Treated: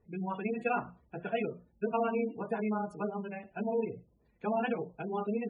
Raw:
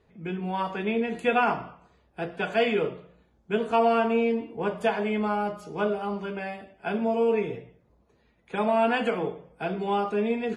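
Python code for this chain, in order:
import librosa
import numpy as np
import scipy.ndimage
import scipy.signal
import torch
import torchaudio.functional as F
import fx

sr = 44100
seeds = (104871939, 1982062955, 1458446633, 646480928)

y = fx.spec_gate(x, sr, threshold_db=-20, keep='strong')
y = fx.stretch_grains(y, sr, factor=0.52, grain_ms=71.0)
y = fx.bass_treble(y, sr, bass_db=6, treble_db=7)
y = fx.hum_notches(y, sr, base_hz=60, count=4)
y = y * 10.0 ** (-7.0 / 20.0)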